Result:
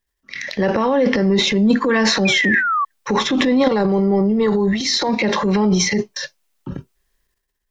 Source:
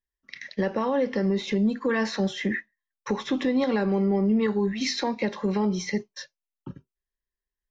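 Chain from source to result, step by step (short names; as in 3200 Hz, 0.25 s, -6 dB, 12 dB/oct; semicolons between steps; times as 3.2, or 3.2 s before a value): transient shaper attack -5 dB, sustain +10 dB; 2.25–2.85 painted sound fall 1100–2500 Hz -28 dBFS; in parallel at +0.5 dB: compressor, threshold -32 dBFS, peak gain reduction 13 dB; 3.68–5.09 on the sum: thirty-one-band EQ 250 Hz -9 dB, 1600 Hz -7 dB, 2500 Hz -12 dB; gain +6 dB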